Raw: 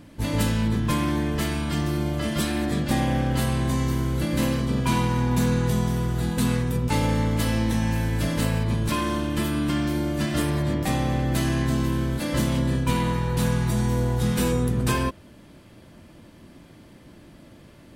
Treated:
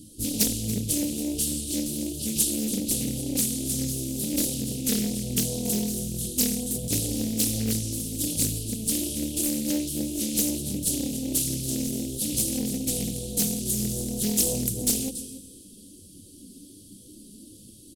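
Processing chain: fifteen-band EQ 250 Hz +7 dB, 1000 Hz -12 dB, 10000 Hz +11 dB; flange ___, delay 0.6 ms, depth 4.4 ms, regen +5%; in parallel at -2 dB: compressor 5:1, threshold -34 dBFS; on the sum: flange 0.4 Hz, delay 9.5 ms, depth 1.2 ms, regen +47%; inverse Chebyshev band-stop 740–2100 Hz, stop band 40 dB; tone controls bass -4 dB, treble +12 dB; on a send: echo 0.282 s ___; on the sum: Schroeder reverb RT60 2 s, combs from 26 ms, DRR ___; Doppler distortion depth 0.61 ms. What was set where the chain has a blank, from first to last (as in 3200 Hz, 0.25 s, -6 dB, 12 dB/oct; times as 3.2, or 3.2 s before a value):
1.3 Hz, -13 dB, 13.5 dB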